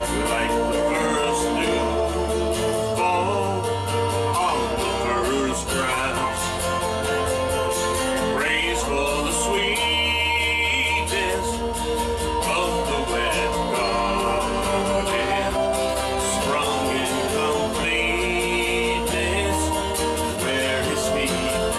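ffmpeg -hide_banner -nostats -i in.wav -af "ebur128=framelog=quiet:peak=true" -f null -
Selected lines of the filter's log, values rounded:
Integrated loudness:
  I:         -21.9 LUFS
  Threshold: -31.9 LUFS
Loudness range:
  LRA:         2.1 LU
  Threshold: -41.9 LUFS
  LRA low:   -22.7 LUFS
  LRA high:  -20.6 LUFS
True peak:
  Peak:       -9.5 dBFS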